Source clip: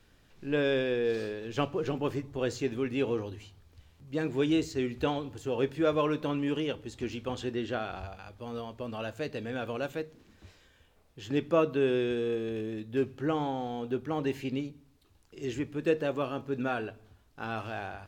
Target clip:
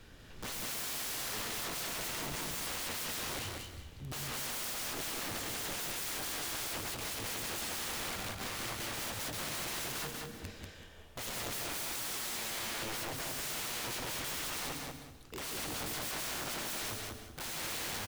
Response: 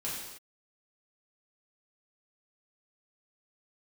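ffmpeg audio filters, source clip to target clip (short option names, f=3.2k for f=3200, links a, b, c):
-filter_complex "[0:a]aeval=exprs='(mod(23.7*val(0)+1,2)-1)/23.7':c=same,acontrast=81,aeval=exprs='(mod(63.1*val(0)+1,2)-1)/63.1':c=same,aecho=1:1:190|380|570:0.708|0.163|0.0375,asplit=2[a][b];[1:a]atrim=start_sample=2205,asetrate=61740,aresample=44100,adelay=113[c];[b][c]afir=irnorm=-1:irlink=0,volume=-11.5dB[d];[a][d]amix=inputs=2:normalize=0"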